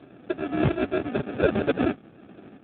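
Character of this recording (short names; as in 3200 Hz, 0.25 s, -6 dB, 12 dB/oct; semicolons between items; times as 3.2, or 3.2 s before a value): aliases and images of a low sample rate 1000 Hz, jitter 0%; random-step tremolo; AMR-NB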